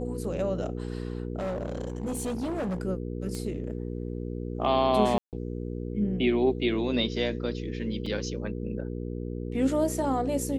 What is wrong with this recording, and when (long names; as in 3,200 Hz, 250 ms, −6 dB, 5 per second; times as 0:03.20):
mains hum 60 Hz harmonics 8 −34 dBFS
0:01.38–0:02.80: clipping −27.5 dBFS
0:03.35: click −22 dBFS
0:05.18–0:05.33: drop-out 148 ms
0:08.06: drop-out 4.2 ms